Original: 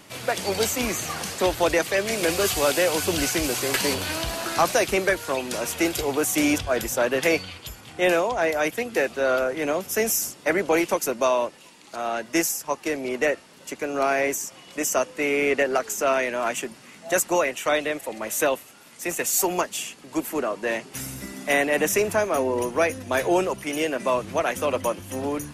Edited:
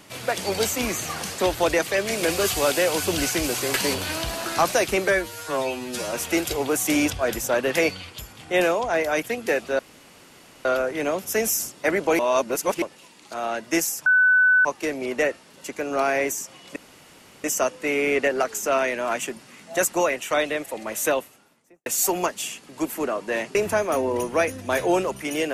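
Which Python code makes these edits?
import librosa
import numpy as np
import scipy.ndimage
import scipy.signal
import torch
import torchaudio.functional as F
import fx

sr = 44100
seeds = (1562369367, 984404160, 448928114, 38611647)

y = fx.studio_fade_out(x, sr, start_s=18.4, length_s=0.81)
y = fx.edit(y, sr, fx.stretch_span(start_s=5.08, length_s=0.52, factor=2.0),
    fx.insert_room_tone(at_s=9.27, length_s=0.86),
    fx.reverse_span(start_s=10.81, length_s=0.63),
    fx.insert_tone(at_s=12.68, length_s=0.59, hz=1500.0, db=-13.5),
    fx.insert_room_tone(at_s=14.79, length_s=0.68),
    fx.cut(start_s=20.9, length_s=1.07), tone=tone)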